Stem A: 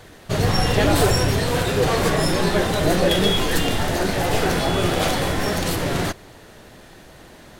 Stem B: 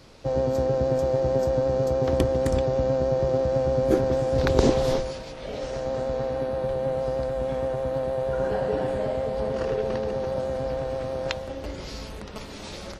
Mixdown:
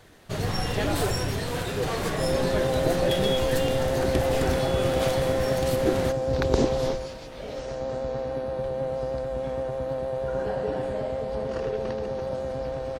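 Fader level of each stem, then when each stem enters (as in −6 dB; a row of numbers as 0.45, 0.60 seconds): −8.5, −2.5 decibels; 0.00, 1.95 seconds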